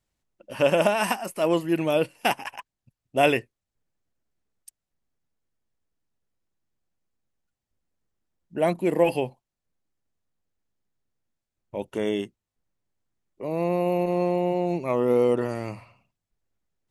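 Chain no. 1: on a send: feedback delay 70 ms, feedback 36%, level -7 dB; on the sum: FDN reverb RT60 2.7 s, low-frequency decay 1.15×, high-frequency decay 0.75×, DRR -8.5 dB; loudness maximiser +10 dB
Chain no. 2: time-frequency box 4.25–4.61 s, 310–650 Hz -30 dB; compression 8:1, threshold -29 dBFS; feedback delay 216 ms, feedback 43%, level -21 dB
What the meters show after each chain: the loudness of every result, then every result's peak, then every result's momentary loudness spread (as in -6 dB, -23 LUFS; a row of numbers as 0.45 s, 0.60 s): -10.5 LUFS, -35.0 LUFS; -1.0 dBFS, -15.5 dBFS; 15 LU, 12 LU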